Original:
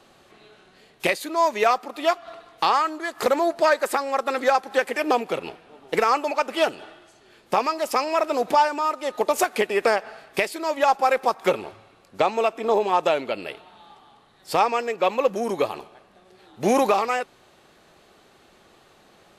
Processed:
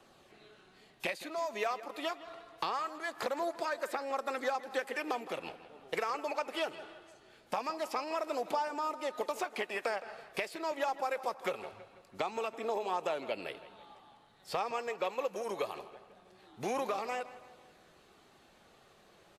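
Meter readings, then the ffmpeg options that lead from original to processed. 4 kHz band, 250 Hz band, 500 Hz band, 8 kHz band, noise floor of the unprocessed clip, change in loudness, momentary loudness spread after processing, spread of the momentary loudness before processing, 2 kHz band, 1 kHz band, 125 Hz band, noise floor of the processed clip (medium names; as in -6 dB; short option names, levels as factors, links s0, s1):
-11.5 dB, -14.0 dB, -13.5 dB, -14.0 dB, -56 dBFS, -13.5 dB, 13 LU, 8 LU, -12.0 dB, -14.0 dB, -14.0 dB, -63 dBFS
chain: -filter_complex "[0:a]acrossover=split=480|5200[s0][s1][s2];[s0]acompressor=threshold=0.0141:ratio=4[s3];[s1]acompressor=threshold=0.0501:ratio=4[s4];[s2]acompressor=threshold=0.00447:ratio=4[s5];[s3][s4][s5]amix=inputs=3:normalize=0,flanger=delay=0.1:depth=2.2:regen=-71:speed=0.23:shape=triangular,asplit=2[s6][s7];[s7]adelay=164,lowpass=f=4100:p=1,volume=0.178,asplit=2[s8][s9];[s9]adelay=164,lowpass=f=4100:p=1,volume=0.52,asplit=2[s10][s11];[s11]adelay=164,lowpass=f=4100:p=1,volume=0.52,asplit=2[s12][s13];[s13]adelay=164,lowpass=f=4100:p=1,volume=0.52,asplit=2[s14][s15];[s15]adelay=164,lowpass=f=4100:p=1,volume=0.52[s16];[s8][s10][s12][s14][s16]amix=inputs=5:normalize=0[s17];[s6][s17]amix=inputs=2:normalize=0,volume=0.708"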